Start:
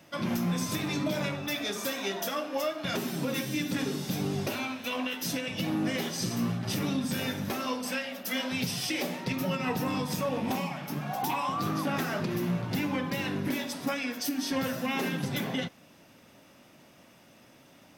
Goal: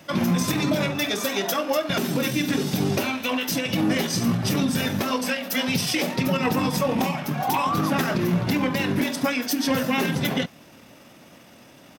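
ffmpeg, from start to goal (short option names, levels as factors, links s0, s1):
-af "atempo=1.5,volume=2.51"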